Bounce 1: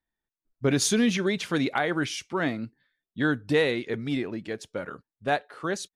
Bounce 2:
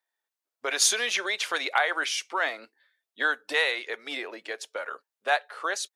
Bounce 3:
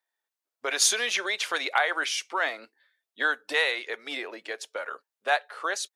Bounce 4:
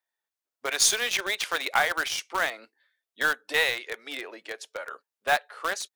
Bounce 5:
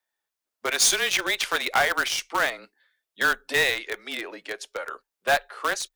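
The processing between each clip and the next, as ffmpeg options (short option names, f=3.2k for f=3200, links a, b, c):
-filter_complex "[0:a]highpass=f=490:w=0.5412,highpass=f=490:w=1.3066,acrossover=split=690[a][b];[a]acompressor=threshold=-42dB:ratio=6[c];[c][b]amix=inputs=2:normalize=0,volume=4.5dB"
-af anull
-filter_complex "[0:a]asplit=2[a][b];[b]acrusher=bits=3:mix=0:aa=0.000001,volume=-7dB[c];[a][c]amix=inputs=2:normalize=0,aeval=exprs='0.501*(cos(1*acos(clip(val(0)/0.501,-1,1)))-cos(1*PI/2))+0.00501*(cos(6*acos(clip(val(0)/0.501,-1,1)))-cos(6*PI/2))':c=same,volume=-2.5dB"
-af "afreqshift=-24,volume=18dB,asoftclip=hard,volume=-18dB,volume=3.5dB"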